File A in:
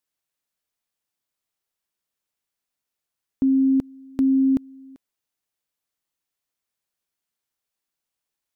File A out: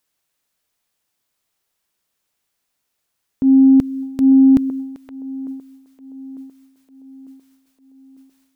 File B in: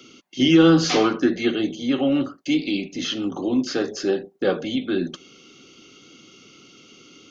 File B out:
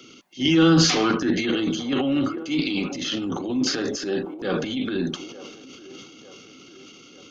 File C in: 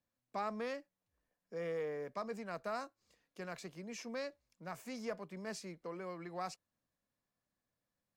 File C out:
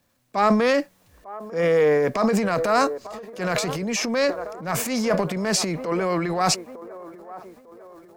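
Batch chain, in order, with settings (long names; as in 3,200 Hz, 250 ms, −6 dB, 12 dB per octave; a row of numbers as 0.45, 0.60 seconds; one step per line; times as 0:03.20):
dynamic equaliser 540 Hz, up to −5 dB, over −34 dBFS, Q 0.93
delay with a band-pass on its return 899 ms, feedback 49%, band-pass 620 Hz, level −16 dB
transient designer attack −8 dB, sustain +9 dB
normalise the peak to −6 dBFS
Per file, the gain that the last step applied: +10.5, +0.5, +21.0 decibels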